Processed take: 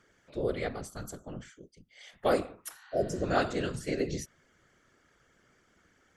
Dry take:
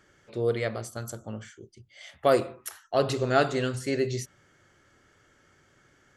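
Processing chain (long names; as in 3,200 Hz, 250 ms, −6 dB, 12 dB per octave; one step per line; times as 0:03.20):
random phases in short frames
healed spectral selection 0:02.80–0:03.21, 750–4,800 Hz before
level −4.5 dB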